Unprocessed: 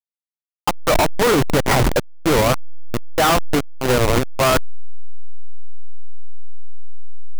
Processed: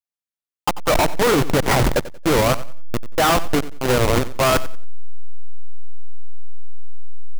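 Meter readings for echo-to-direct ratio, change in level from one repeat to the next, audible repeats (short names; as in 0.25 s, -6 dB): -15.5 dB, -11.5 dB, 2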